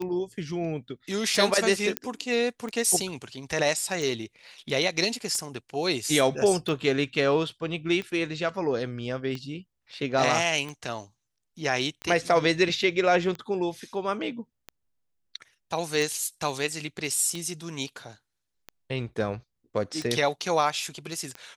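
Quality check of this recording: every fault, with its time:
tick 45 rpm -21 dBFS
1.97 s: pop -9 dBFS

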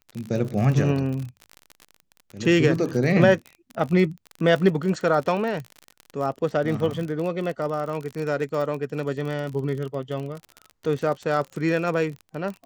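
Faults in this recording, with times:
crackle 42 per s -29 dBFS

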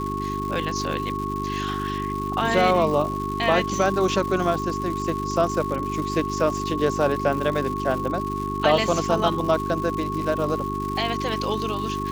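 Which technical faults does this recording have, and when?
crackle 280 per s -30 dBFS
hum 50 Hz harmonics 8 -30 dBFS
whine 1.1 kHz -28 dBFS

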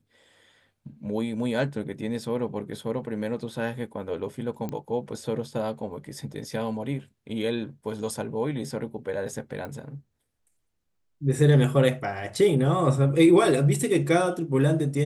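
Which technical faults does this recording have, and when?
4.69 s: pop -20 dBFS
9.65 s: pop -23 dBFS

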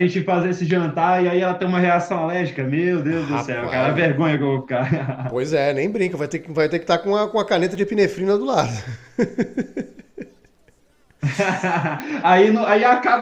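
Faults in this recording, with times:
7.75 s: dropout 2.6 ms
12.00 s: pop -13 dBFS

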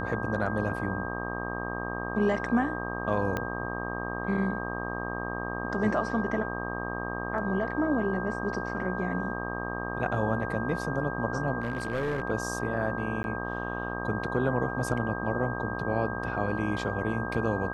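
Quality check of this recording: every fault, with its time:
buzz 60 Hz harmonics 21 -35 dBFS
whine 1.6 kHz -36 dBFS
3.37 s: pop -16 dBFS
11.60–12.22 s: clipped -25.5 dBFS
13.23–13.24 s: dropout 11 ms

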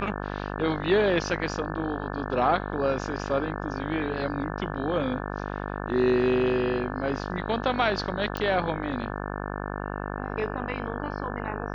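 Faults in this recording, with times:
buzz 50 Hz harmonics 35 -33 dBFS
8.37 s: pop -17 dBFS

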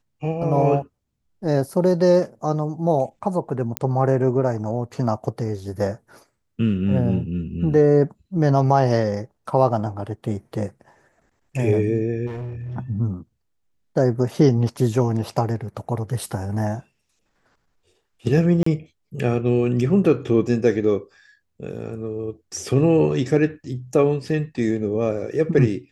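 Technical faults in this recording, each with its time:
3.77 s: pop -5 dBFS
12.26–12.77 s: clipped -27.5 dBFS
18.63–18.66 s: dropout 34 ms

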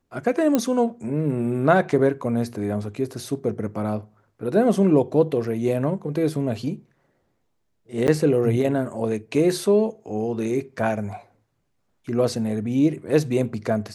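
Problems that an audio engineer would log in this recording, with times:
0.55 s: pop -7 dBFS
8.07–8.08 s: dropout 9.4 ms

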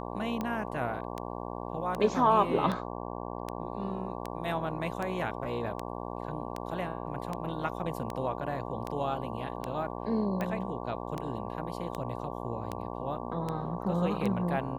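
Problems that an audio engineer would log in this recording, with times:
buzz 60 Hz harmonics 19 -38 dBFS
tick 78 rpm -20 dBFS

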